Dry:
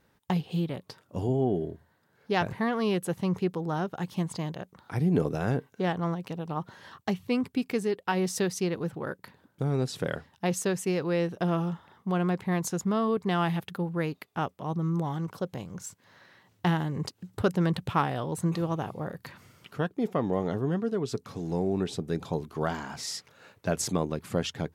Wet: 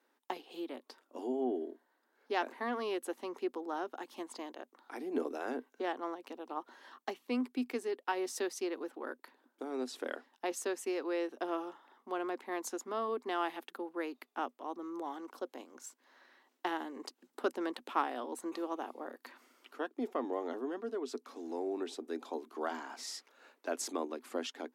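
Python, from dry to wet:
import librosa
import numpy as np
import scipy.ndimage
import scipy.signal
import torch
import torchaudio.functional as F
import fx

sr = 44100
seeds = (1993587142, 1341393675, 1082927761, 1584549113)

y = scipy.signal.sosfilt(scipy.signal.cheby1(6, 3, 240.0, 'highpass', fs=sr, output='sos'), x)
y = y * 10.0 ** (-5.0 / 20.0)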